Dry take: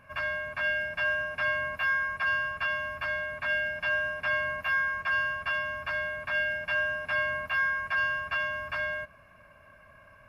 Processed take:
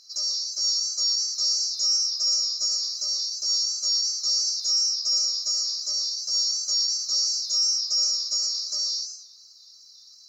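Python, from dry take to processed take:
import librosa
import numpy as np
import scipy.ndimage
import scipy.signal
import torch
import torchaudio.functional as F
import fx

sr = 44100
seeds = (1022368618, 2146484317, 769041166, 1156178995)

y = fx.band_swap(x, sr, width_hz=4000)
y = fx.echo_warbled(y, sr, ms=112, feedback_pct=38, rate_hz=2.8, cents=180, wet_db=-8.0)
y = y * librosa.db_to_amplitude(4.0)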